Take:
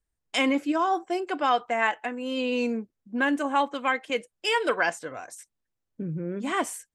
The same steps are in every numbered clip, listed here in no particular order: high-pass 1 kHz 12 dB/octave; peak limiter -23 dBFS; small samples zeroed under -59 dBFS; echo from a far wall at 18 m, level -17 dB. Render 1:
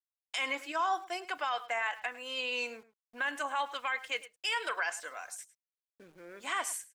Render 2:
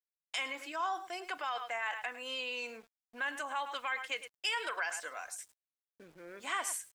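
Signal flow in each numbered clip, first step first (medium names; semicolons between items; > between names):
high-pass > small samples zeroed > peak limiter > echo from a far wall; echo from a far wall > peak limiter > high-pass > small samples zeroed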